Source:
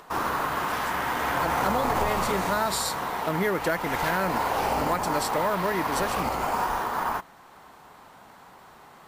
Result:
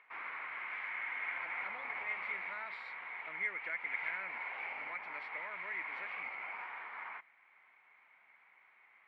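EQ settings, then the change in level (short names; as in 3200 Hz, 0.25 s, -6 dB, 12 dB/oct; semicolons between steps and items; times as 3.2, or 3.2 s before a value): band-pass 2200 Hz, Q 14; air absorption 400 m; +8.5 dB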